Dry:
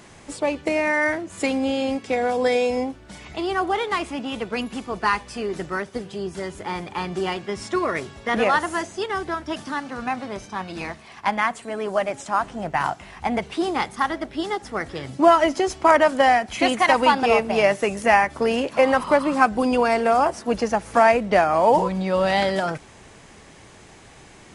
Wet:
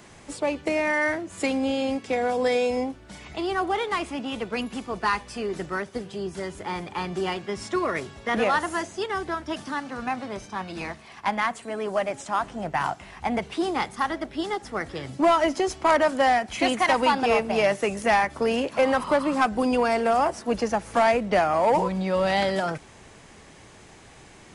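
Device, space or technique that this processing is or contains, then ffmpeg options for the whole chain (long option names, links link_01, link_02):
one-band saturation: -filter_complex "[0:a]acrossover=split=240|3400[link_01][link_02][link_03];[link_02]asoftclip=type=tanh:threshold=-11.5dB[link_04];[link_01][link_04][link_03]amix=inputs=3:normalize=0,volume=-2dB"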